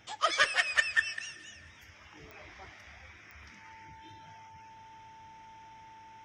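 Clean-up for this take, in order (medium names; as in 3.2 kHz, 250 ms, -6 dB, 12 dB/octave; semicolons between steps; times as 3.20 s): de-click; de-hum 103.7 Hz, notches 8; band-stop 890 Hz, Q 30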